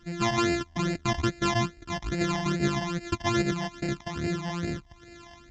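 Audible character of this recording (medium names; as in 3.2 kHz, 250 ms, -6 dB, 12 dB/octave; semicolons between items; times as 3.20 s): a buzz of ramps at a fixed pitch in blocks of 128 samples; phasing stages 12, 2.4 Hz, lowest notch 410–1100 Hz; µ-law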